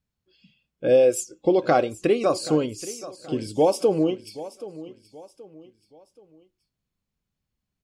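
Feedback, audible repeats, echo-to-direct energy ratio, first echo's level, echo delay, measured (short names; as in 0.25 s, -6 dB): 38%, 3, -16.0 dB, -16.5 dB, 0.777 s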